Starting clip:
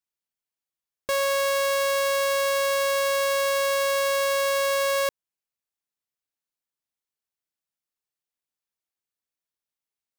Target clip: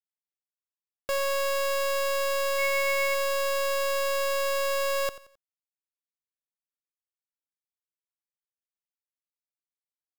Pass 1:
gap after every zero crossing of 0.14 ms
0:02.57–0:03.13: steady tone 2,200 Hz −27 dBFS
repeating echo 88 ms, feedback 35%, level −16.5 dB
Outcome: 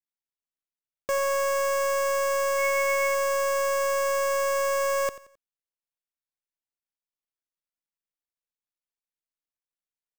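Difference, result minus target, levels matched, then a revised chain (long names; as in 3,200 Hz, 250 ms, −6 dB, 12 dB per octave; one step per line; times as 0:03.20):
gap after every zero crossing: distortion −6 dB
gap after every zero crossing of 0.43 ms
0:02.57–0:03.13: steady tone 2,200 Hz −27 dBFS
repeating echo 88 ms, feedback 35%, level −16.5 dB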